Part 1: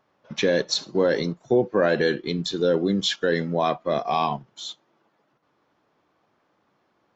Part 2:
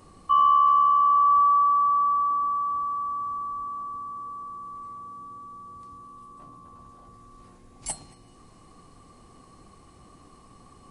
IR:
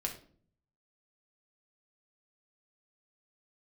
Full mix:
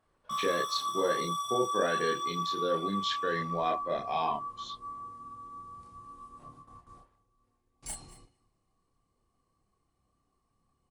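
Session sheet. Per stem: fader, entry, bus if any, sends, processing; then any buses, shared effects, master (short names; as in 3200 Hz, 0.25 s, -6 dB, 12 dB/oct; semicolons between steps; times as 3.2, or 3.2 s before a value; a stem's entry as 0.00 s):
-3.0 dB, 0.00 s, no send, no echo send, Bessel low-pass 4000 Hz; low shelf 420 Hz -8.5 dB
-1.0 dB, 0.00 s, no send, echo send -20 dB, overloaded stage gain 30 dB; gate with hold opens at -39 dBFS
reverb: off
echo: echo 0.226 s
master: chorus voices 4, 0.83 Hz, delay 30 ms, depth 1.5 ms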